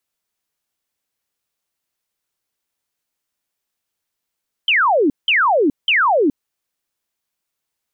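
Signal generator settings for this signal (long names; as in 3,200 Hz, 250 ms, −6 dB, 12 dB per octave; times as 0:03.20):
repeated falling chirps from 3,200 Hz, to 260 Hz, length 0.42 s sine, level −11.5 dB, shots 3, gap 0.18 s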